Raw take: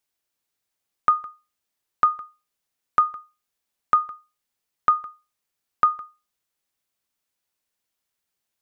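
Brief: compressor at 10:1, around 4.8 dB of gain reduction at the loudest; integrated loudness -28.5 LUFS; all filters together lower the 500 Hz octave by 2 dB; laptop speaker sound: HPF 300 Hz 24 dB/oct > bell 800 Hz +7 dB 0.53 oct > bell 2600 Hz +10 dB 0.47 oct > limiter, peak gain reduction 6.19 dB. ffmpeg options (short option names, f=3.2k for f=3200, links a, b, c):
-af "equalizer=f=500:t=o:g=-5.5,acompressor=threshold=-18dB:ratio=10,highpass=f=300:w=0.5412,highpass=f=300:w=1.3066,equalizer=f=800:t=o:w=0.53:g=7,equalizer=f=2.6k:t=o:w=0.47:g=10,volume=1.5dB,alimiter=limit=-10.5dB:level=0:latency=1"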